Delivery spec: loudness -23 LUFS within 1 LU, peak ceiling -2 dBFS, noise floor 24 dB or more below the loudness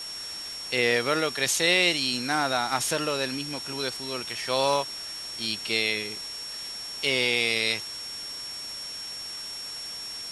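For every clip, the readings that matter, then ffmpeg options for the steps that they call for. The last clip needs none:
steady tone 5.5 kHz; tone level -35 dBFS; noise floor -37 dBFS; noise floor target -51 dBFS; loudness -27.0 LUFS; peak level -8.0 dBFS; loudness target -23.0 LUFS
-> -af "bandreject=f=5500:w=30"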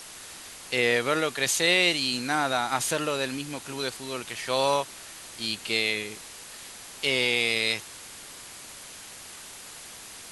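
steady tone not found; noise floor -44 dBFS; noise floor target -50 dBFS
-> -af "afftdn=nr=6:nf=-44"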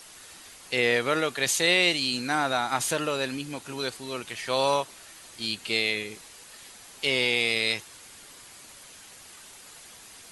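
noise floor -49 dBFS; noise floor target -50 dBFS
-> -af "afftdn=nr=6:nf=-49"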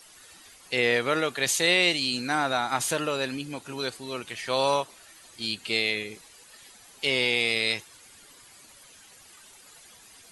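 noise floor -53 dBFS; loudness -26.0 LUFS; peak level -8.0 dBFS; loudness target -23.0 LUFS
-> -af "volume=1.41"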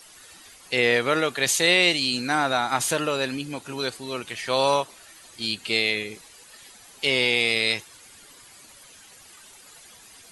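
loudness -23.0 LUFS; peak level -5.0 dBFS; noise floor -50 dBFS

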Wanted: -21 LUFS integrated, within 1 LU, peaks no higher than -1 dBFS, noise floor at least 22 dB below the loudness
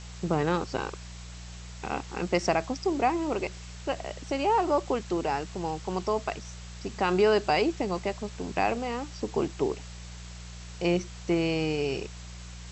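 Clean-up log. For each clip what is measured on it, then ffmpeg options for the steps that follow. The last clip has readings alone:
hum 60 Hz; highest harmonic 180 Hz; hum level -41 dBFS; noise floor -43 dBFS; noise floor target -51 dBFS; loudness -29.0 LUFS; peak level -11.0 dBFS; loudness target -21.0 LUFS
-> -af "bandreject=f=60:t=h:w=4,bandreject=f=120:t=h:w=4,bandreject=f=180:t=h:w=4"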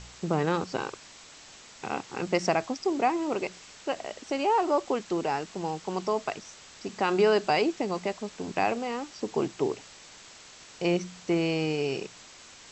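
hum not found; noise floor -50 dBFS; noise floor target -51 dBFS
-> -af "afftdn=nr=6:nf=-50"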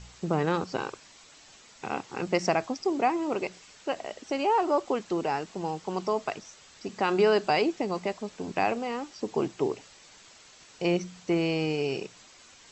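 noise floor -54 dBFS; loudness -29.0 LUFS; peak level -11.0 dBFS; loudness target -21.0 LUFS
-> -af "volume=2.51"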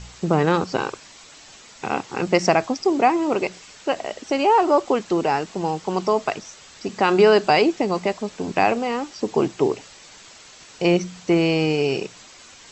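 loudness -21.0 LUFS; peak level -3.0 dBFS; noise floor -46 dBFS

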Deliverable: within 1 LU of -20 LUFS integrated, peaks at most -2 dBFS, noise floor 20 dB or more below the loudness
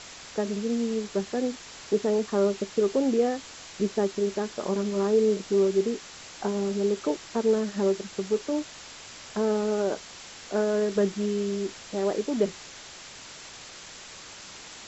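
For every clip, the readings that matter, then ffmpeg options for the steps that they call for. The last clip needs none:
noise floor -45 dBFS; noise floor target -48 dBFS; loudness -27.5 LUFS; peak level -12.5 dBFS; loudness target -20.0 LUFS
-> -af "afftdn=nr=6:nf=-45"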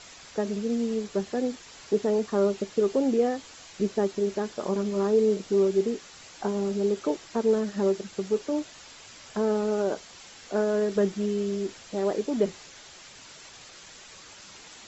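noise floor -48 dBFS; loudness -27.5 LUFS; peak level -12.5 dBFS; loudness target -20.0 LUFS
-> -af "volume=2.37"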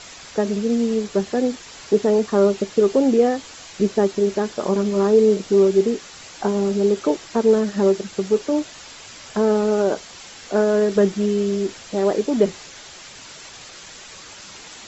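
loudness -20.0 LUFS; peak level -5.0 dBFS; noise floor -41 dBFS

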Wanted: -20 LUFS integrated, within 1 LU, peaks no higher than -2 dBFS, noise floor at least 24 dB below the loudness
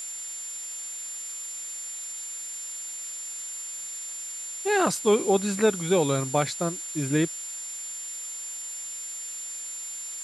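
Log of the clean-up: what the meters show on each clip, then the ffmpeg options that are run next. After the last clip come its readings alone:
steady tone 7.2 kHz; tone level -34 dBFS; noise floor -37 dBFS; noise floor target -53 dBFS; loudness -28.5 LUFS; peak level -9.0 dBFS; loudness target -20.0 LUFS
-> -af "bandreject=f=7200:w=30"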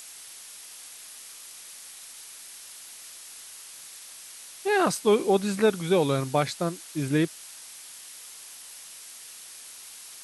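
steady tone not found; noise floor -45 dBFS; noise floor target -49 dBFS
-> -af "afftdn=nr=6:nf=-45"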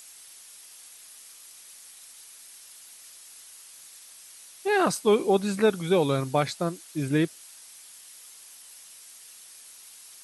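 noise floor -49 dBFS; noise floor target -50 dBFS
-> -af "afftdn=nr=6:nf=-49"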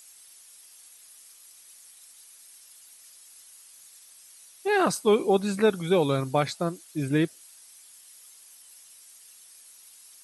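noise floor -53 dBFS; loudness -25.5 LUFS; peak level -10.0 dBFS; loudness target -20.0 LUFS
-> -af "volume=1.88"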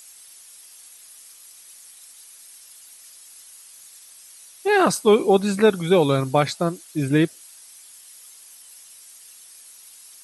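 loudness -20.0 LUFS; peak level -4.5 dBFS; noise floor -47 dBFS

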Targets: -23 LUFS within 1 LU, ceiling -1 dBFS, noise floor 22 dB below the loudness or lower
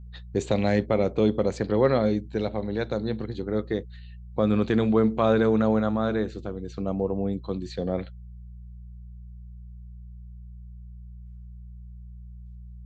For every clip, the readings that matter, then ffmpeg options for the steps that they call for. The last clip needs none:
hum 60 Hz; highest harmonic 180 Hz; hum level -40 dBFS; loudness -25.5 LUFS; peak level -9.5 dBFS; loudness target -23.0 LUFS
-> -af "bandreject=f=60:t=h:w=4,bandreject=f=120:t=h:w=4,bandreject=f=180:t=h:w=4"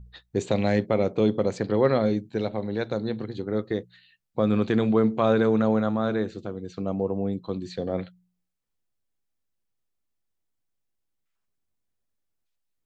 hum not found; loudness -25.5 LUFS; peak level -9.5 dBFS; loudness target -23.0 LUFS
-> -af "volume=1.33"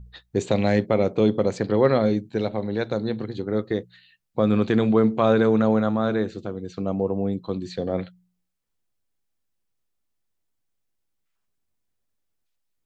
loudness -23.0 LUFS; peak level -7.0 dBFS; noise floor -75 dBFS

